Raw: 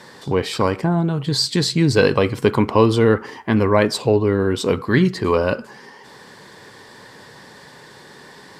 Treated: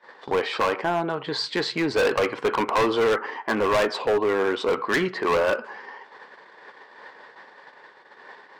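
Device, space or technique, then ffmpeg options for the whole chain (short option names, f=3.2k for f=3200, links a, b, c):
walkie-talkie: -af "highpass=570,lowpass=2.2k,asoftclip=type=hard:threshold=-22.5dB,agate=range=-21dB:threshold=-45dB:ratio=16:detection=peak,volume=5dB"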